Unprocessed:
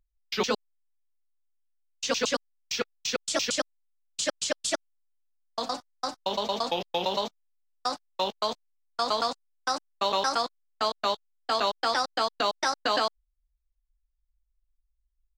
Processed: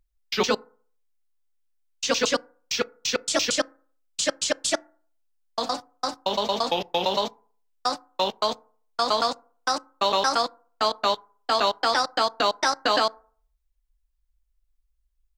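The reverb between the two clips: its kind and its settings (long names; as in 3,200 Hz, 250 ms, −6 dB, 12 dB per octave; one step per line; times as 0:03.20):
feedback delay network reverb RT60 0.48 s, low-frequency decay 0.9×, high-frequency decay 0.35×, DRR 20 dB
level +4 dB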